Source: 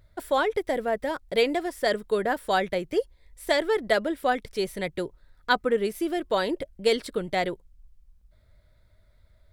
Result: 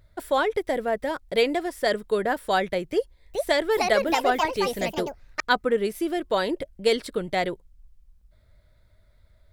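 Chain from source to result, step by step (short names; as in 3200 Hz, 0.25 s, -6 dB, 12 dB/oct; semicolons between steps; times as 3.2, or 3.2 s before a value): 2.91–5.51 echoes that change speed 0.427 s, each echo +4 st, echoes 2; gain +1 dB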